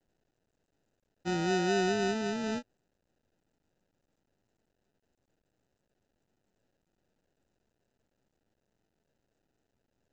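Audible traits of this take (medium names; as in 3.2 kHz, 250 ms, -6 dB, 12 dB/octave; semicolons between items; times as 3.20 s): phasing stages 6, 0.76 Hz, lowest notch 750–1600 Hz; aliases and images of a low sample rate 1.1 kHz, jitter 0%; µ-law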